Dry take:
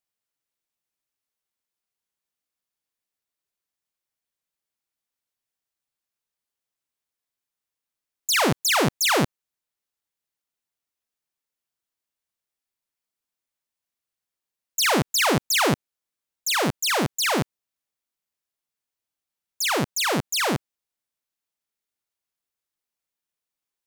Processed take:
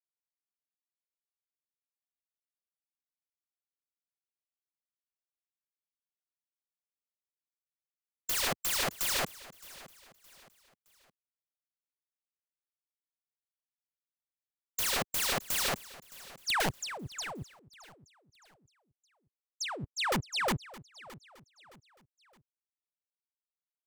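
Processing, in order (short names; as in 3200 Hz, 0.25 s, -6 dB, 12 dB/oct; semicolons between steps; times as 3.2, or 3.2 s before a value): per-bin expansion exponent 3; low-pass opened by the level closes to 2000 Hz, open at -25.5 dBFS; dynamic EQ 380 Hz, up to +7 dB, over -42 dBFS, Q 1.7; 16.69–19.95 negative-ratio compressor -41 dBFS, ratio -1; wrapped overs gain 27 dB; feedback echo 0.617 s, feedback 38%, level -19 dB; gain +2 dB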